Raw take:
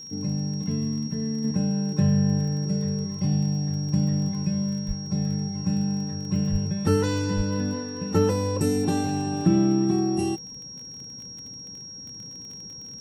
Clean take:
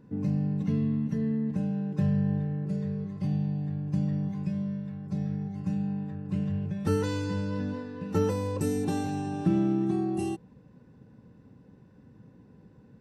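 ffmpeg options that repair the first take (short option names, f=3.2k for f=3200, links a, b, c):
-filter_complex "[0:a]adeclick=t=4,bandreject=f=5.6k:w=30,asplit=3[a][b][c];[a]afade=t=out:st=4.87:d=0.02[d];[b]highpass=f=140:w=0.5412,highpass=f=140:w=1.3066,afade=t=in:st=4.87:d=0.02,afade=t=out:st=4.99:d=0.02[e];[c]afade=t=in:st=4.99:d=0.02[f];[d][e][f]amix=inputs=3:normalize=0,asplit=3[g][h][i];[g]afade=t=out:st=6.51:d=0.02[j];[h]highpass=f=140:w=0.5412,highpass=f=140:w=1.3066,afade=t=in:st=6.51:d=0.02,afade=t=out:st=6.63:d=0.02[k];[i]afade=t=in:st=6.63:d=0.02[l];[j][k][l]amix=inputs=3:normalize=0,asplit=3[m][n][o];[m]afade=t=out:st=7.36:d=0.02[p];[n]highpass=f=140:w=0.5412,highpass=f=140:w=1.3066,afade=t=in:st=7.36:d=0.02,afade=t=out:st=7.48:d=0.02[q];[o]afade=t=in:st=7.48:d=0.02[r];[p][q][r]amix=inputs=3:normalize=0,asetnsamples=n=441:p=0,asendcmd='1.44 volume volume -5dB',volume=0dB"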